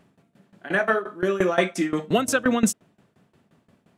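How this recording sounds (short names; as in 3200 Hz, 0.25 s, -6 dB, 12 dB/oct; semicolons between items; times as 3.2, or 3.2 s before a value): tremolo saw down 5.7 Hz, depth 90%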